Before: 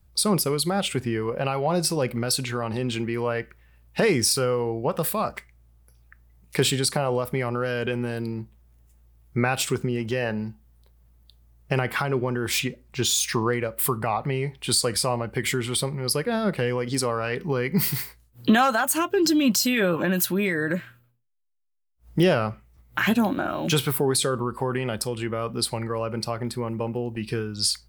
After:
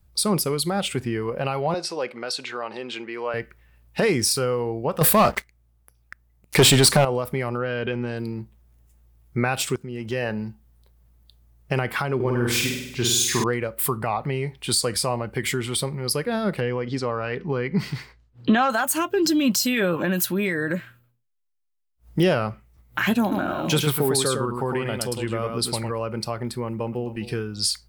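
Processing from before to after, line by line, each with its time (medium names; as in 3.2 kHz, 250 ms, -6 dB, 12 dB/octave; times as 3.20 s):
1.74–3.34 s: band-pass 440–5100 Hz
5.01–7.05 s: waveshaping leveller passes 3
7.57–8.18 s: low-pass 3.1 kHz -> 7.4 kHz 24 dB/octave
9.76–10.18 s: fade in linear, from -17.5 dB
12.15–13.44 s: flutter echo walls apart 8.5 m, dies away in 0.86 s
16.60–18.70 s: distance through air 150 m
23.21–25.91 s: delay 107 ms -4.5 dB
26.66–27.10 s: echo throw 260 ms, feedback 15%, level -15 dB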